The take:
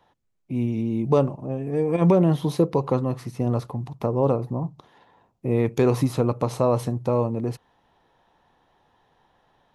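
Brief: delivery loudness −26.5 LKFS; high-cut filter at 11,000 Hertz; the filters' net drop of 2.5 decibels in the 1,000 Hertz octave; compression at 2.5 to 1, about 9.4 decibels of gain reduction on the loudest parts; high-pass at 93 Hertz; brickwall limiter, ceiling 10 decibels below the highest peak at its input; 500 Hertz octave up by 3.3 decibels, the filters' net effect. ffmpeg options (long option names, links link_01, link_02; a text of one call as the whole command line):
ffmpeg -i in.wav -af "highpass=93,lowpass=11000,equalizer=frequency=500:width_type=o:gain=5,equalizer=frequency=1000:width_type=o:gain=-5,acompressor=threshold=-26dB:ratio=2.5,volume=6dB,alimiter=limit=-16dB:level=0:latency=1" out.wav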